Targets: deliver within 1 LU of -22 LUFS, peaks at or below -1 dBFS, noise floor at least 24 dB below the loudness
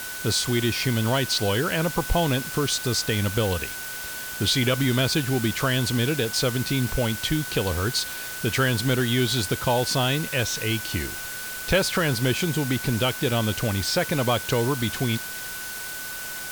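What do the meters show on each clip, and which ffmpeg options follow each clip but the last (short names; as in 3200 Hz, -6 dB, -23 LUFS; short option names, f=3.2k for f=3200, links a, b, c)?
steady tone 1500 Hz; tone level -36 dBFS; noise floor -34 dBFS; noise floor target -48 dBFS; loudness -24.0 LUFS; peak -10.0 dBFS; loudness target -22.0 LUFS
-> -af "bandreject=f=1.5k:w=30"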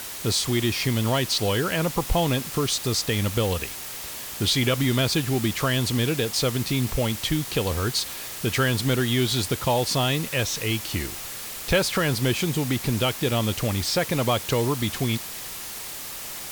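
steady tone none; noise floor -36 dBFS; noise floor target -49 dBFS
-> -af "afftdn=nr=13:nf=-36"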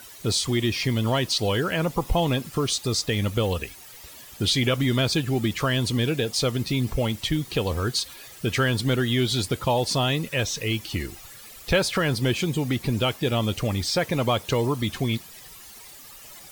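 noise floor -45 dBFS; noise floor target -49 dBFS
-> -af "afftdn=nr=6:nf=-45"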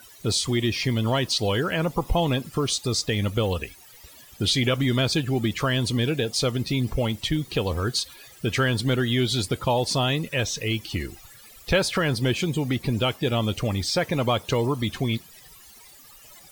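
noise floor -49 dBFS; loudness -24.5 LUFS; peak -10.5 dBFS; loudness target -22.0 LUFS
-> -af "volume=2.5dB"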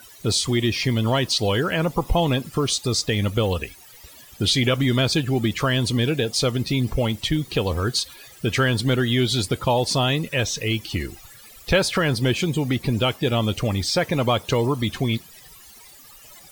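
loudness -22.0 LUFS; peak -8.0 dBFS; noise floor -47 dBFS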